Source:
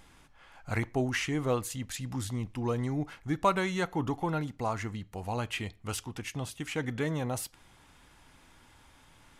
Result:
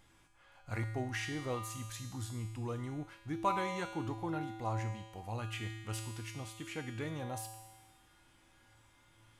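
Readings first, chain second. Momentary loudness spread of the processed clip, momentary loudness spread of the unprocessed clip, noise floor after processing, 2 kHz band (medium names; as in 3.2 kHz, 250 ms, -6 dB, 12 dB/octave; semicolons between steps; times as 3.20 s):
8 LU, 8 LU, -66 dBFS, -7.0 dB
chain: feedback comb 110 Hz, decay 1.3 s, harmonics odd, mix 90%; trim +9.5 dB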